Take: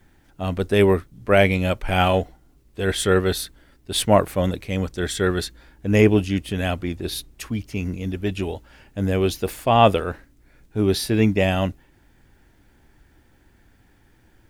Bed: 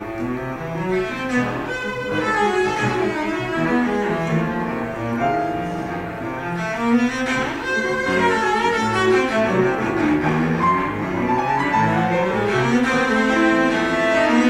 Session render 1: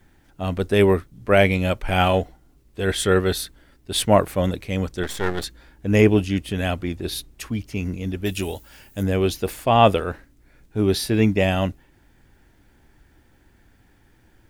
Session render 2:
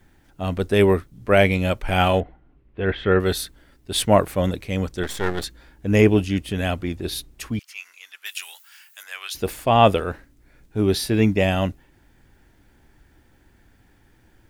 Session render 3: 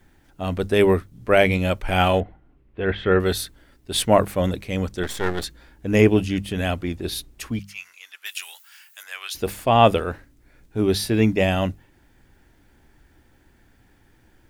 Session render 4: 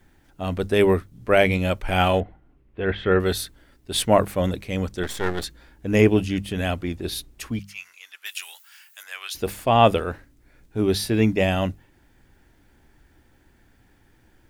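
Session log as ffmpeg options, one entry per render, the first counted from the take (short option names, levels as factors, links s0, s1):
-filter_complex "[0:a]asettb=1/sr,asplit=3[s0][s1][s2];[s0]atrim=end=5.034[s3];[s1]atrim=start=5.03:end=5.44,asetpts=PTS-STARTPTS,afade=t=in:d=0.004:c=qsin,afade=t=out:st=0.406:d=0.004:c=qsin,aeval=exprs='max(val(0),0)':c=same[s4];[s2]atrim=start=5.436[s5];[s3][s4]acrossfade=d=0.004:c1=hsin:c2=qsin[s6];[s6][s5]acrossfade=d=0.004:c1=qsin:c2=hsin,asplit=3[s7][s8][s9];[s7]afade=t=out:st=8.24:d=0.02[s10];[s8]aemphasis=mode=production:type=75fm,afade=t=in:st=8.24:d=0.02,afade=t=out:st=9.02:d=0.02[s11];[s9]afade=t=in:st=9.02:d=0.02[s12];[s10][s11][s12]amix=inputs=3:normalize=0"
-filter_complex "[0:a]asettb=1/sr,asplit=3[s0][s1][s2];[s0]atrim=end=2.204[s3];[s1]atrim=start=2.2:end=3.2,asetpts=PTS-STARTPTS,afade=t=in:d=0.004:c=qsin,afade=t=out:st=0.996:d=0.004:c=qsin,lowpass=f=2700:w=0.5412,lowpass=f=2700:w=1.3066[s4];[s2]atrim=start=3.196[s5];[s3][s4]acrossfade=d=0.004:c1=hsin:c2=qsin[s6];[s6][s5]acrossfade=d=0.004:c1=qsin:c2=hsin,asettb=1/sr,asplit=3[s7][s8][s9];[s7]atrim=end=7.594[s10];[s8]atrim=start=7.59:end=9.35,asetpts=PTS-STARTPTS,afade=t=in:d=0.004:c=qsin,afade=t=out:st=1.756:d=0.004:c=qsin,highpass=f=1200:w=0.5412,highpass=f=1200:w=1.3066[s11];[s9]atrim=start=9.346[s12];[s10][s11]acrossfade=d=0.004:c1=hsin:c2=qsin[s13];[s13][s12]acrossfade=d=0.004:c1=qsin:c2=hsin"
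-af "bandreject=f=50:t=h:w=6,bandreject=f=100:t=h:w=6,bandreject=f=150:t=h:w=6,bandreject=f=200:t=h:w=6"
-af "volume=0.891"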